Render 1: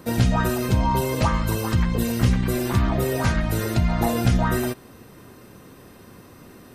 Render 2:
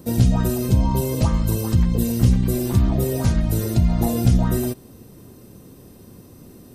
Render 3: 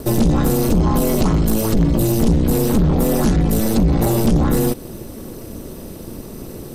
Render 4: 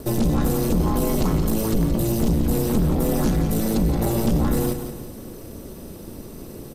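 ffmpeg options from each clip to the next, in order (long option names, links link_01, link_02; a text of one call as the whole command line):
ffmpeg -i in.wav -af "equalizer=frequency=1600:width_type=o:width=2.5:gain=-14.5,volume=4dB" out.wav
ffmpeg -i in.wav -filter_complex "[0:a]asplit=2[link_01][link_02];[link_02]acompressor=threshold=-26dB:ratio=6,volume=2dB[link_03];[link_01][link_03]amix=inputs=2:normalize=0,aeval=exprs='val(0)*sin(2*PI*110*n/s)':channel_layout=same,asoftclip=type=tanh:threshold=-17.5dB,volume=8dB" out.wav
ffmpeg -i in.wav -af "aecho=1:1:174|348|522|696|870:0.355|0.153|0.0656|0.0282|0.0121,volume=-5.5dB" out.wav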